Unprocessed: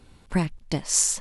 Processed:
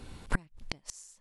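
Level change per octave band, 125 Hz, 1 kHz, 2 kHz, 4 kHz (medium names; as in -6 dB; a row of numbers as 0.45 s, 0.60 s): -13.0 dB, -7.5 dB, -2.0 dB, -13.5 dB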